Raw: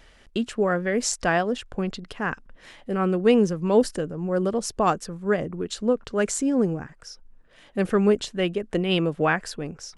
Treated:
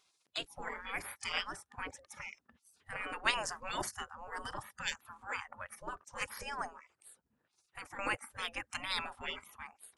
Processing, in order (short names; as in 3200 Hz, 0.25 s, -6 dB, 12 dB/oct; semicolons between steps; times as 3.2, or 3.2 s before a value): spectral gate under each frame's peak -25 dB weak; spectral noise reduction 14 dB; 6.66–7.99 compressor 3:1, threshold -53 dBFS, peak gain reduction 11.5 dB; gain +5.5 dB